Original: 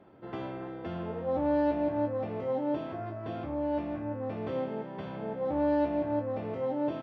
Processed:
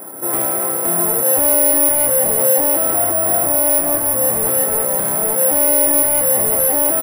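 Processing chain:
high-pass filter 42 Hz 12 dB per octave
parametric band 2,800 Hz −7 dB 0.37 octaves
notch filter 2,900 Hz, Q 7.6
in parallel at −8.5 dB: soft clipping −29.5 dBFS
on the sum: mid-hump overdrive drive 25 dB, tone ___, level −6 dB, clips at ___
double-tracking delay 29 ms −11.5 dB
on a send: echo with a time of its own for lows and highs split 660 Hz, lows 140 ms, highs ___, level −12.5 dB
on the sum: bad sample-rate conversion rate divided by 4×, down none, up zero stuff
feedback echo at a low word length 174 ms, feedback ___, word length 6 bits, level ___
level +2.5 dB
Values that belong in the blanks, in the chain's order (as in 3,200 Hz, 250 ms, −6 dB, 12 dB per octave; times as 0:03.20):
1,700 Hz, −18 dBFS, 347 ms, 80%, −12 dB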